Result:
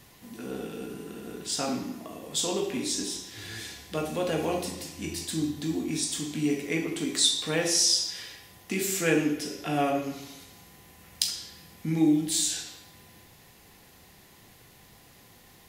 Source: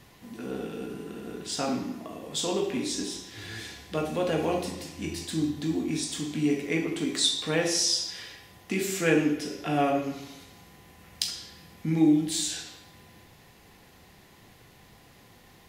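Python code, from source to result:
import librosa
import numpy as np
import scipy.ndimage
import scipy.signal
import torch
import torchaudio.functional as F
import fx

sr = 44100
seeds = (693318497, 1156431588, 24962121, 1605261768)

y = fx.high_shelf(x, sr, hz=5700.0, db=8.5)
y = F.gain(torch.from_numpy(y), -1.5).numpy()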